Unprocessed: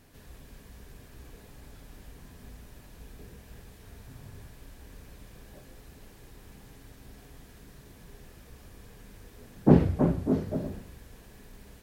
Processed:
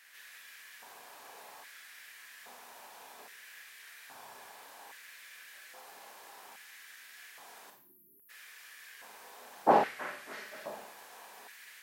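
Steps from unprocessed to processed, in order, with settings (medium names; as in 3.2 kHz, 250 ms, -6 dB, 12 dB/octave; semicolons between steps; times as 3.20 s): spectral selection erased 7.70–8.30 s, 390–11000 Hz; Schroeder reverb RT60 0.41 s, combs from 29 ms, DRR 3.5 dB; LFO high-pass square 0.61 Hz 820–1800 Hz; trim +2.5 dB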